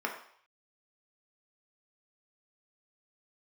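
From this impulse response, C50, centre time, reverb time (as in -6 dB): 7.0 dB, 23 ms, 0.60 s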